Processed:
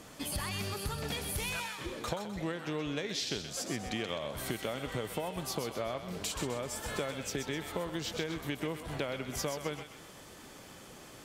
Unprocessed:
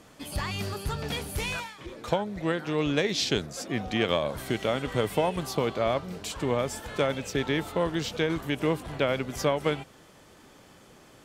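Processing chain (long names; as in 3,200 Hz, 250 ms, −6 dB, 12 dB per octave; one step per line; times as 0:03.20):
high-shelf EQ 5,100 Hz +5 dB
downward compressor, threshold −35 dBFS, peak gain reduction 14.5 dB
on a send: feedback echo with a high-pass in the loop 128 ms, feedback 45%, high-pass 880 Hz, level −7 dB
on the sum: level +1.5 dB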